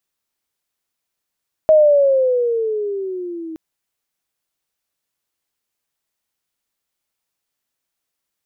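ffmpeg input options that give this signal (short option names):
-f lavfi -i "aevalsrc='pow(10,(-6.5-20.5*t/1.87)/20)*sin(2*PI*633*1.87/(-12*log(2)/12)*(exp(-12*log(2)/12*t/1.87)-1))':d=1.87:s=44100"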